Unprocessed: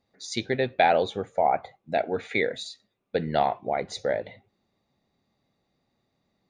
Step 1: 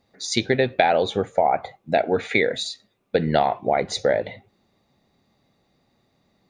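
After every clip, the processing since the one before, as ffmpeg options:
ffmpeg -i in.wav -af "acompressor=threshold=-23dB:ratio=6,volume=8.5dB" out.wav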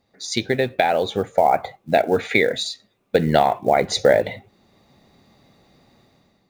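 ffmpeg -i in.wav -af "acrusher=bits=8:mode=log:mix=0:aa=0.000001,dynaudnorm=framelen=140:gausssize=7:maxgain=11.5dB,volume=-1dB" out.wav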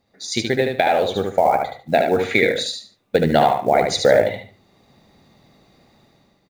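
ffmpeg -i in.wav -af "aecho=1:1:74|148|222:0.596|0.149|0.0372" out.wav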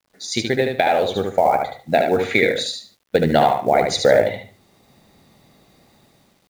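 ffmpeg -i in.wav -af "acrusher=bits=9:mix=0:aa=0.000001" out.wav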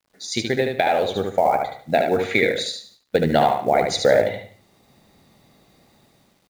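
ffmpeg -i in.wav -af "aecho=1:1:178:0.0794,volume=-2dB" out.wav

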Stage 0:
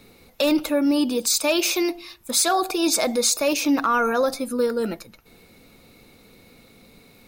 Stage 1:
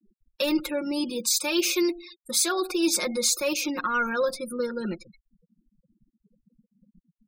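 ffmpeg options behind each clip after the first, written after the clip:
ffmpeg -i in.wav -af "afftfilt=real='re*gte(hypot(re,im),0.0178)':imag='im*gte(hypot(re,im),0.0178)':win_size=1024:overlap=0.75,equalizer=frequency=720:width_type=o:width=0.38:gain=-14.5,aecho=1:1:5.6:0.77,volume=-5dB" out.wav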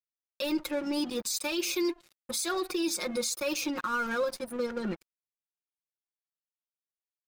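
ffmpeg -i in.wav -af "aeval=exprs='sgn(val(0))*max(abs(val(0))-0.01,0)':channel_layout=same,alimiter=limit=-21.5dB:level=0:latency=1:release=110" out.wav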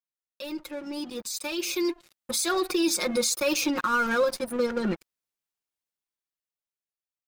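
ffmpeg -i in.wav -af "dynaudnorm=framelen=330:gausssize=11:maxgain=11.5dB,volume=-5.5dB" out.wav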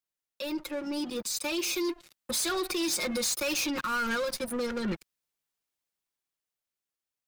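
ffmpeg -i in.wav -filter_complex "[0:a]acrossover=split=170|1700|3500[link_01][link_02][link_03][link_04];[link_02]alimiter=level_in=1.5dB:limit=-24dB:level=0:latency=1:release=450,volume=-1.5dB[link_05];[link_01][link_05][link_03][link_04]amix=inputs=4:normalize=0,asoftclip=type=tanh:threshold=-28.5dB,volume=3dB" out.wav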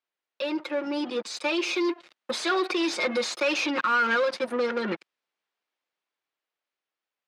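ffmpeg -i in.wav -af "highpass=340,lowpass=3100,volume=7.5dB" out.wav

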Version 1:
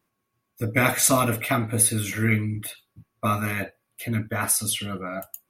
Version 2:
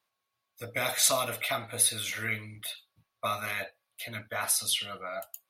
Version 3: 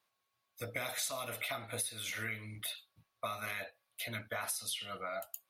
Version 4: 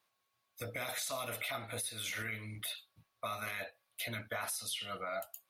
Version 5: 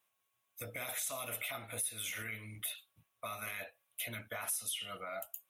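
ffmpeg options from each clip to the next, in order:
ffmpeg -i in.wav -filter_complex "[0:a]lowshelf=frequency=440:width_type=q:width=1.5:gain=-11,acrossover=split=580|4000[link_01][link_02][link_03];[link_02]alimiter=limit=-17.5dB:level=0:latency=1:release=191[link_04];[link_01][link_04][link_03]amix=inputs=3:normalize=0,equalizer=frequency=3900:width=1.4:gain=10,volume=-6dB" out.wav
ffmpeg -i in.wav -af "acompressor=threshold=-36dB:ratio=6" out.wav
ffmpeg -i in.wav -af "alimiter=level_in=6.5dB:limit=-24dB:level=0:latency=1:release=26,volume=-6.5dB,volume=1.5dB" out.wav
ffmpeg -i in.wav -af "aexciter=amount=1.5:drive=1.2:freq=2400,volume=-3.5dB" out.wav

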